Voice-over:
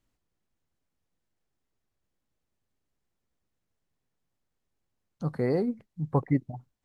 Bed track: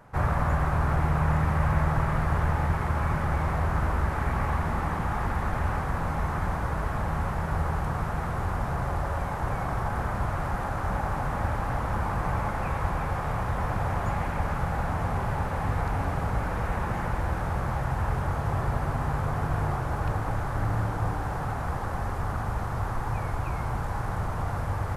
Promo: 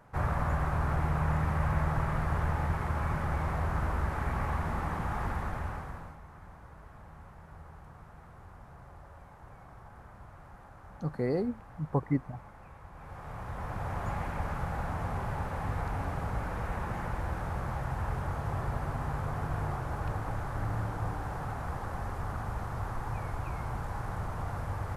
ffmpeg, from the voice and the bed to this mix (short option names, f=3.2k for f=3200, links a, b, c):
-filter_complex "[0:a]adelay=5800,volume=-3.5dB[a];[1:a]volume=11dB,afade=t=out:st=5.28:d=0.91:silence=0.141254,afade=t=in:st=12.91:d=1.2:silence=0.158489[b];[a][b]amix=inputs=2:normalize=0"